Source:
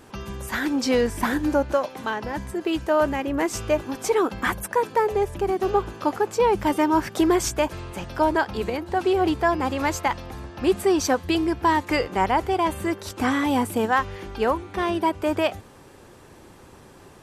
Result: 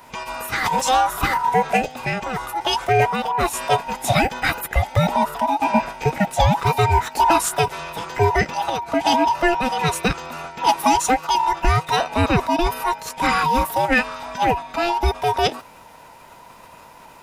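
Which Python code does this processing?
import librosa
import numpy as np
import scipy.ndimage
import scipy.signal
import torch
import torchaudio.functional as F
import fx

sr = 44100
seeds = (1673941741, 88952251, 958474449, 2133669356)

y = fx.band_invert(x, sr, width_hz=1000)
y = fx.formant_shift(y, sr, semitones=4)
y = y * 10.0 ** (3.5 / 20.0)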